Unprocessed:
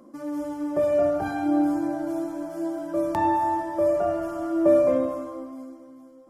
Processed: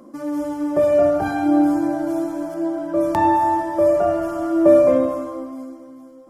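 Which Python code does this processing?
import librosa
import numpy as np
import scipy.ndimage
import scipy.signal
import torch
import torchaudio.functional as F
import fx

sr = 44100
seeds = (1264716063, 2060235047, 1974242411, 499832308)

y = fx.high_shelf(x, sr, hz=5000.0, db=-10.0, at=(2.54, 3.01))
y = y * 10.0 ** (6.0 / 20.0)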